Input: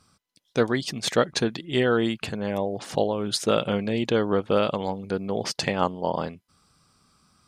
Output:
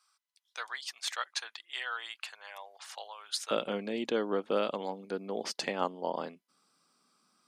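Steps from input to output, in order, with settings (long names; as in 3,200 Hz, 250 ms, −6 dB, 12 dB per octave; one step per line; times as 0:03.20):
high-pass filter 950 Hz 24 dB per octave, from 0:03.51 220 Hz
level −7.5 dB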